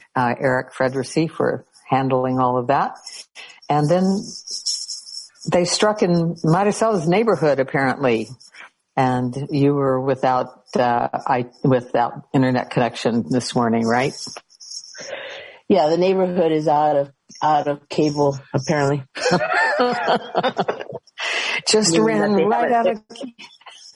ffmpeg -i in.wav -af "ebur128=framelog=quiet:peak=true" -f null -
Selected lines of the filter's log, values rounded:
Integrated loudness:
  I:         -19.5 LUFS
  Threshold: -30.1 LUFS
Loudness range:
  LRA:         2.7 LU
  Threshold: -40.1 LUFS
  LRA low:   -21.4 LUFS
  LRA high:  -18.8 LUFS
True peak:
  Peak:       -3.8 dBFS